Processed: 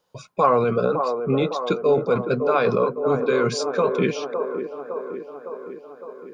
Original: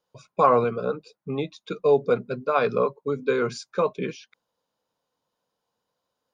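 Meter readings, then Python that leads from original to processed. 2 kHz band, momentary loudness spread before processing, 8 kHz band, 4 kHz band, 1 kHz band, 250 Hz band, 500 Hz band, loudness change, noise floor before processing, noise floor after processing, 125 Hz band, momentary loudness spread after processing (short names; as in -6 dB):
+3.5 dB, 13 LU, n/a, +6.5 dB, +2.0 dB, +6.0 dB, +3.5 dB, +2.5 dB, -82 dBFS, -46 dBFS, +6.0 dB, 16 LU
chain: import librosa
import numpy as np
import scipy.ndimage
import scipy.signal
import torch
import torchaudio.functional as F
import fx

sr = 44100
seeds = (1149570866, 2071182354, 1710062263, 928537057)

p1 = fx.over_compress(x, sr, threshold_db=-27.0, ratio=-0.5)
p2 = x + (p1 * 10.0 ** (-1.0 / 20.0))
y = fx.echo_wet_bandpass(p2, sr, ms=559, feedback_pct=63, hz=600.0, wet_db=-5.5)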